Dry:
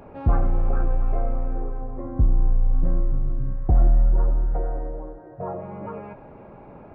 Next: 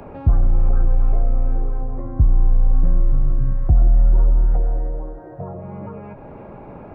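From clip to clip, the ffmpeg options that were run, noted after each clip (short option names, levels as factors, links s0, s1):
-filter_complex "[0:a]acrossover=split=170|630[s0][s1][s2];[s0]acompressor=threshold=0.141:ratio=4[s3];[s1]acompressor=threshold=0.00562:ratio=4[s4];[s2]acompressor=threshold=0.00316:ratio=4[s5];[s3][s4][s5]amix=inputs=3:normalize=0,volume=2.37"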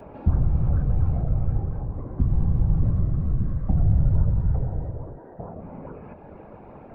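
-af "afftfilt=real='hypot(re,im)*cos(2*PI*random(0))':imag='hypot(re,im)*sin(2*PI*random(1))':win_size=512:overlap=0.75"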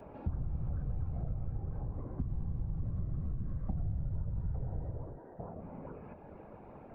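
-af "acompressor=threshold=0.0631:ratio=6,volume=0.422"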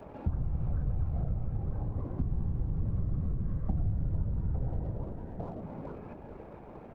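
-filter_complex "[0:a]asplit=2[s0][s1];[s1]aeval=exprs='sgn(val(0))*max(abs(val(0))-0.00168,0)':c=same,volume=0.668[s2];[s0][s2]amix=inputs=2:normalize=0,asplit=6[s3][s4][s5][s6][s7][s8];[s4]adelay=452,afreqshift=-110,volume=0.282[s9];[s5]adelay=904,afreqshift=-220,volume=0.141[s10];[s6]adelay=1356,afreqshift=-330,volume=0.0708[s11];[s7]adelay=1808,afreqshift=-440,volume=0.0351[s12];[s8]adelay=2260,afreqshift=-550,volume=0.0176[s13];[s3][s9][s10][s11][s12][s13]amix=inputs=6:normalize=0"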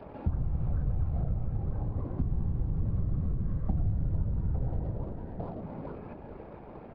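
-af "aresample=11025,aresample=44100,volume=1.19"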